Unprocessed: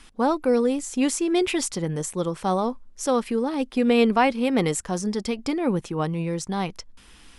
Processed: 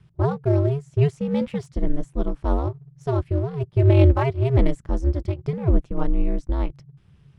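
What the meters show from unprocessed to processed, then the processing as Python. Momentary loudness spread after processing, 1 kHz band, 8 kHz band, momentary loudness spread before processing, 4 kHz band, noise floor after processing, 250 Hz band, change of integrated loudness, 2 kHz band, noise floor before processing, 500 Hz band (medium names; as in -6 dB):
11 LU, -6.5 dB, under -20 dB, 8 LU, under -10 dB, -57 dBFS, -3.0 dB, +1.0 dB, -8.0 dB, -51 dBFS, -1.5 dB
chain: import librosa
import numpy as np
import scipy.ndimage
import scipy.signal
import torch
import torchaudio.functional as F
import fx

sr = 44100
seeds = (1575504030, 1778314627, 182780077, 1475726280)

p1 = x * np.sin(2.0 * np.pi * 140.0 * np.arange(len(x)) / sr)
p2 = fx.riaa(p1, sr, side='playback')
p3 = np.sign(p2) * np.maximum(np.abs(p2) - 10.0 ** (-31.0 / 20.0), 0.0)
p4 = p2 + (p3 * librosa.db_to_amplitude(-3.5))
p5 = fx.upward_expand(p4, sr, threshold_db=-20.0, expansion=1.5)
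y = p5 * librosa.db_to_amplitude(-4.5)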